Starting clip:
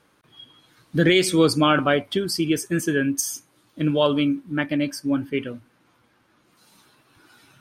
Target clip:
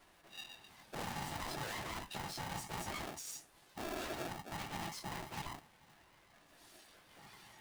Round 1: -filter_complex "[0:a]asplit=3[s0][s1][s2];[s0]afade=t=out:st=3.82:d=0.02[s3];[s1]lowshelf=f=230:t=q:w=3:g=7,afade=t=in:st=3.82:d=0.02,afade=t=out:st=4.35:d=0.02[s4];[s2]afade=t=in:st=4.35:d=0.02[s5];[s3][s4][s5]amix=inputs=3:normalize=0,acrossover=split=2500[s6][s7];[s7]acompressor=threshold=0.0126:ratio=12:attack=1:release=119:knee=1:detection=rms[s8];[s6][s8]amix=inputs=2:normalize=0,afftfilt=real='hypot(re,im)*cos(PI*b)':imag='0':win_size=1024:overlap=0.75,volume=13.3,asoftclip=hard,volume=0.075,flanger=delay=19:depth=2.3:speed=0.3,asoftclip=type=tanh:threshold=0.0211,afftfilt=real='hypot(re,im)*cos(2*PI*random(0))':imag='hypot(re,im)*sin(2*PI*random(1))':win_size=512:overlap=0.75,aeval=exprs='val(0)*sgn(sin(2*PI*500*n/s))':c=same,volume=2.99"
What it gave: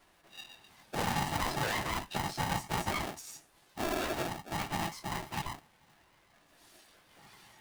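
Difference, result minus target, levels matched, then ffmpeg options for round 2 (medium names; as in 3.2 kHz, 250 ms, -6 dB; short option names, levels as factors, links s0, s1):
compression: peak gain reduction +6 dB; saturation: distortion -5 dB
-filter_complex "[0:a]asplit=3[s0][s1][s2];[s0]afade=t=out:st=3.82:d=0.02[s3];[s1]lowshelf=f=230:t=q:w=3:g=7,afade=t=in:st=3.82:d=0.02,afade=t=out:st=4.35:d=0.02[s4];[s2]afade=t=in:st=4.35:d=0.02[s5];[s3][s4][s5]amix=inputs=3:normalize=0,acrossover=split=2500[s6][s7];[s7]acompressor=threshold=0.0266:ratio=12:attack=1:release=119:knee=1:detection=rms[s8];[s6][s8]amix=inputs=2:normalize=0,afftfilt=real='hypot(re,im)*cos(PI*b)':imag='0':win_size=1024:overlap=0.75,volume=13.3,asoftclip=hard,volume=0.075,flanger=delay=19:depth=2.3:speed=0.3,asoftclip=type=tanh:threshold=0.00562,afftfilt=real='hypot(re,im)*cos(2*PI*random(0))':imag='hypot(re,im)*sin(2*PI*random(1))':win_size=512:overlap=0.75,aeval=exprs='val(0)*sgn(sin(2*PI*500*n/s))':c=same,volume=2.99"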